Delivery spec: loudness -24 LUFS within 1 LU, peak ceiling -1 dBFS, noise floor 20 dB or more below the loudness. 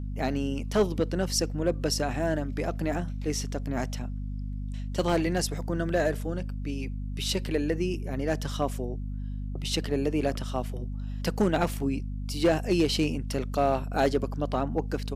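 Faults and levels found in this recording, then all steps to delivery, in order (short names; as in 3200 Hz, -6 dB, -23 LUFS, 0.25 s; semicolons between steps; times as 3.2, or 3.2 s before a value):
clipped 0.3%; flat tops at -16.0 dBFS; hum 50 Hz; harmonics up to 250 Hz; hum level -31 dBFS; loudness -29.5 LUFS; peak -16.0 dBFS; loudness target -24.0 LUFS
-> clip repair -16 dBFS; notches 50/100/150/200/250 Hz; gain +5.5 dB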